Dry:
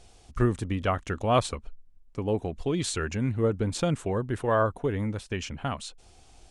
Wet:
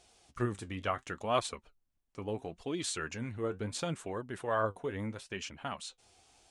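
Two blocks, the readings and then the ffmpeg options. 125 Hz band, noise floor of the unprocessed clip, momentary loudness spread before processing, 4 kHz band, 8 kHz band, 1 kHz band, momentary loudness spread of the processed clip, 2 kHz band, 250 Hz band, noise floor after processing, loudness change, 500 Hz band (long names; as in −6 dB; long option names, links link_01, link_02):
−12.5 dB, −55 dBFS, 10 LU, −4.5 dB, −4.5 dB, −6.0 dB, 10 LU, −5.0 dB, −9.5 dB, −76 dBFS, −8.5 dB, −8.0 dB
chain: -af "flanger=delay=2.6:depth=9.4:regen=59:speed=0.72:shape=triangular,highpass=frequency=94:poles=1,lowshelf=frequency=480:gain=-7.5"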